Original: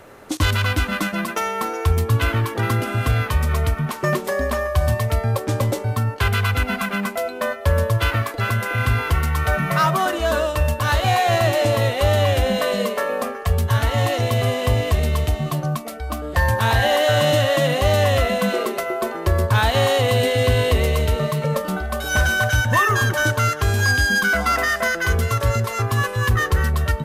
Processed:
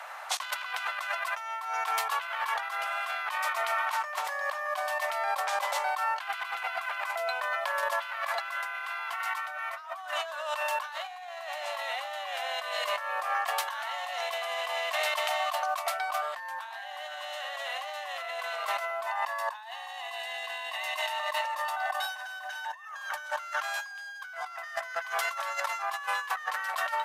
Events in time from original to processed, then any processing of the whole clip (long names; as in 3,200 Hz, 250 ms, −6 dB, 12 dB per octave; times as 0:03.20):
0:07.15–0:07.83: downward compressor 3 to 1, threshold −23 dBFS
0:19.06–0:22.85: comb filter 1.1 ms
whole clip: Butterworth high-pass 700 Hz 48 dB per octave; high-shelf EQ 5,300 Hz −10.5 dB; compressor whose output falls as the input rises −35 dBFS, ratio −1